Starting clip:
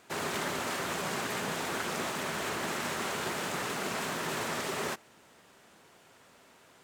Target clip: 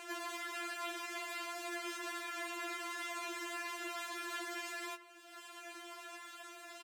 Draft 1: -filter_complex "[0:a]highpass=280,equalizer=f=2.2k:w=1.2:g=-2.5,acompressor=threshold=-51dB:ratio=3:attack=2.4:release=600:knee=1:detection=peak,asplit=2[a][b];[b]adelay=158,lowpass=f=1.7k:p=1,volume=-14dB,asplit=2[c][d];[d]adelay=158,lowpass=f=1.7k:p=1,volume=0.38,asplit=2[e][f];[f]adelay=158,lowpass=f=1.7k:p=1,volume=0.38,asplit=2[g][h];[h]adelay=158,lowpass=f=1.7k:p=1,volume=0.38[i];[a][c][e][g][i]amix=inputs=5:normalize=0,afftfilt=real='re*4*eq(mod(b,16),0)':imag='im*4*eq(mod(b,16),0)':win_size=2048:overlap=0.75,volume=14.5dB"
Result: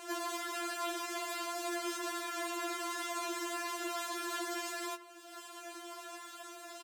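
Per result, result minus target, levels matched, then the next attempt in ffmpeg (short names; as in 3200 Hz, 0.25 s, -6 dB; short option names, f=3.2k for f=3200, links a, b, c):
compressor: peak gain reduction -7 dB; 2000 Hz band -3.5 dB
-filter_complex "[0:a]highpass=280,equalizer=f=2.2k:w=1.2:g=-2.5,acompressor=threshold=-58.5dB:ratio=3:attack=2.4:release=600:knee=1:detection=peak,asplit=2[a][b];[b]adelay=158,lowpass=f=1.7k:p=1,volume=-14dB,asplit=2[c][d];[d]adelay=158,lowpass=f=1.7k:p=1,volume=0.38,asplit=2[e][f];[f]adelay=158,lowpass=f=1.7k:p=1,volume=0.38,asplit=2[g][h];[h]adelay=158,lowpass=f=1.7k:p=1,volume=0.38[i];[a][c][e][g][i]amix=inputs=5:normalize=0,afftfilt=real='re*4*eq(mod(b,16),0)':imag='im*4*eq(mod(b,16),0)':win_size=2048:overlap=0.75,volume=14.5dB"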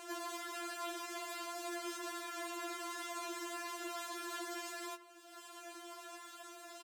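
2000 Hz band -3.5 dB
-filter_complex "[0:a]highpass=280,equalizer=f=2.2k:w=1.2:g=5.5,acompressor=threshold=-58.5dB:ratio=3:attack=2.4:release=600:knee=1:detection=peak,asplit=2[a][b];[b]adelay=158,lowpass=f=1.7k:p=1,volume=-14dB,asplit=2[c][d];[d]adelay=158,lowpass=f=1.7k:p=1,volume=0.38,asplit=2[e][f];[f]adelay=158,lowpass=f=1.7k:p=1,volume=0.38,asplit=2[g][h];[h]adelay=158,lowpass=f=1.7k:p=1,volume=0.38[i];[a][c][e][g][i]amix=inputs=5:normalize=0,afftfilt=real='re*4*eq(mod(b,16),0)':imag='im*4*eq(mod(b,16),0)':win_size=2048:overlap=0.75,volume=14.5dB"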